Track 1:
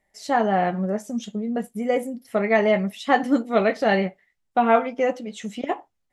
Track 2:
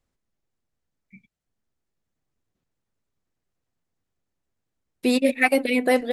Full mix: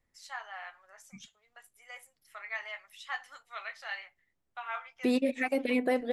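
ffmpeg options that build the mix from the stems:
ffmpeg -i stem1.wav -i stem2.wav -filter_complex "[0:a]highpass=frequency=1100:width=0.5412,highpass=frequency=1100:width=1.3066,volume=-11.5dB[link_01];[1:a]highshelf=frequency=3500:gain=-9,volume=-1dB[link_02];[link_01][link_02]amix=inputs=2:normalize=0,alimiter=limit=-18.5dB:level=0:latency=1:release=379" out.wav

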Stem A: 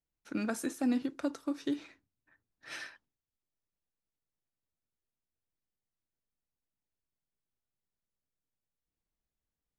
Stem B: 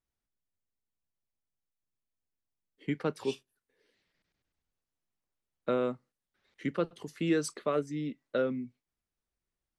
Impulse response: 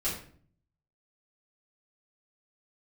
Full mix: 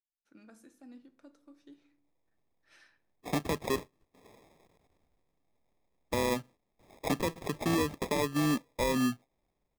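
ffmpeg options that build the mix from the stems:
-filter_complex "[0:a]volume=-13dB,afade=type=in:start_time=2.6:duration=0.63:silence=0.298538,asplit=2[link_01][link_02];[link_02]volume=-15dB[link_03];[1:a]dynaudnorm=framelen=200:gausssize=7:maxgain=10dB,lowpass=frequency=2400:width_type=q:width=2.6,acrusher=samples=30:mix=1:aa=0.000001,adelay=450,volume=1.5dB[link_04];[2:a]atrim=start_sample=2205[link_05];[link_03][link_05]afir=irnorm=-1:irlink=0[link_06];[link_01][link_04][link_06]amix=inputs=3:normalize=0,alimiter=limit=-21.5dB:level=0:latency=1:release=195"

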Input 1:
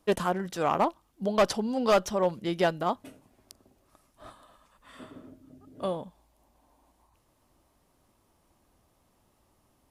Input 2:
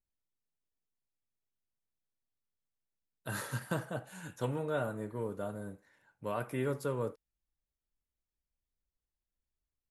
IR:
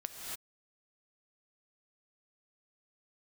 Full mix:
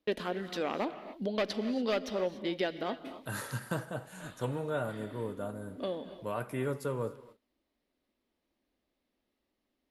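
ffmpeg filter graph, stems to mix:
-filter_complex "[0:a]equalizer=frequency=125:width_type=o:width=1:gain=-9,equalizer=frequency=250:width_type=o:width=1:gain=10,equalizer=frequency=500:width_type=o:width=1:gain=6,equalizer=frequency=1000:width_type=o:width=1:gain=-5,equalizer=frequency=2000:width_type=o:width=1:gain=9,equalizer=frequency=4000:width_type=o:width=1:gain=10,equalizer=frequency=8000:width_type=o:width=1:gain=-8,acompressor=threshold=-34dB:ratio=2,volume=-5.5dB,asplit=2[link_01][link_02];[link_02]volume=-6dB[link_03];[1:a]volume=-1dB,asplit=3[link_04][link_05][link_06];[link_05]volume=-13dB[link_07];[link_06]apad=whole_len=436803[link_08];[link_01][link_08]sidechaincompress=threshold=-50dB:ratio=8:attack=16:release=200[link_09];[2:a]atrim=start_sample=2205[link_10];[link_03][link_07]amix=inputs=2:normalize=0[link_11];[link_11][link_10]afir=irnorm=-1:irlink=0[link_12];[link_09][link_04][link_12]amix=inputs=3:normalize=0,agate=range=-16dB:threshold=-54dB:ratio=16:detection=peak"

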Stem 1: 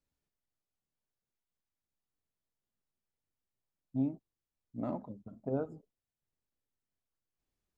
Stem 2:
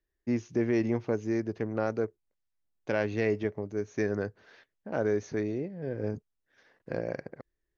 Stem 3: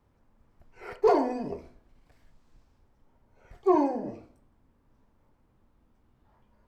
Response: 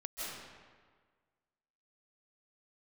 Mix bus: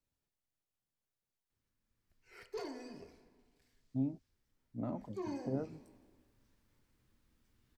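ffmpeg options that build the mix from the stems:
-filter_complex "[0:a]volume=-1.5dB[link_01];[2:a]firequalizer=gain_entry='entry(350,0);entry(760,-7);entry(1700,7);entry(4500,14)':delay=0.05:min_phase=1,dynaudnorm=framelen=240:gausssize=5:maxgain=5dB,adelay=1500,volume=-14.5dB,afade=type=in:start_time=5.22:duration=0.34:silence=0.398107,asplit=2[link_02][link_03];[link_03]volume=-15dB[link_04];[3:a]atrim=start_sample=2205[link_05];[link_04][link_05]afir=irnorm=-1:irlink=0[link_06];[link_01][link_02][link_06]amix=inputs=3:normalize=0,equalizer=frequency=110:width_type=o:width=0.24:gain=5,acrossover=split=270[link_07][link_08];[link_08]acompressor=threshold=-46dB:ratio=1.5[link_09];[link_07][link_09]amix=inputs=2:normalize=0"

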